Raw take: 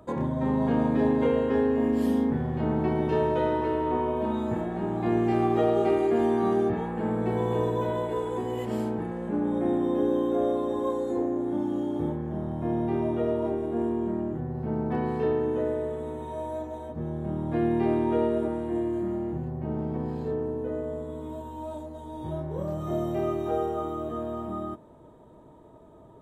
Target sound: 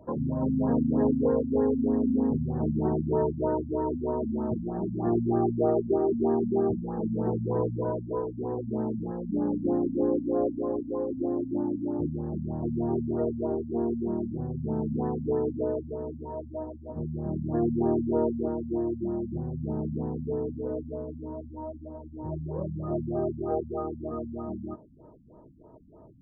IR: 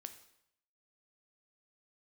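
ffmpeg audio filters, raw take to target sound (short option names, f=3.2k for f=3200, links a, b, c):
-af "highshelf=f=2.4k:t=q:w=3:g=9,afftfilt=real='re*lt(b*sr/1024,260*pow(1900/260,0.5+0.5*sin(2*PI*3.2*pts/sr)))':imag='im*lt(b*sr/1024,260*pow(1900/260,0.5+0.5*sin(2*PI*3.2*pts/sr)))':win_size=1024:overlap=0.75"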